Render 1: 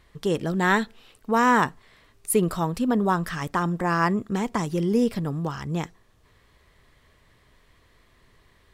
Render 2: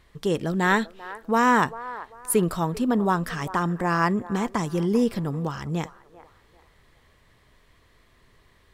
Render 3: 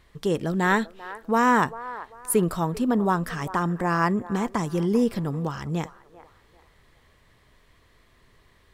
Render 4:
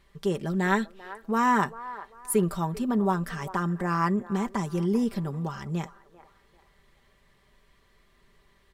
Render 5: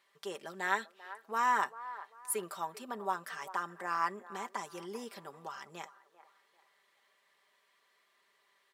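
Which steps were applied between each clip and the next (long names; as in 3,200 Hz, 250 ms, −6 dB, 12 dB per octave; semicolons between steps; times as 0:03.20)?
delay with a band-pass on its return 393 ms, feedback 32%, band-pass 870 Hz, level −14.5 dB
dynamic equaliser 3,700 Hz, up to −3 dB, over −39 dBFS, Q 0.75
comb filter 5.1 ms, depth 57%; level −5 dB
high-pass filter 660 Hz 12 dB per octave; level −4.5 dB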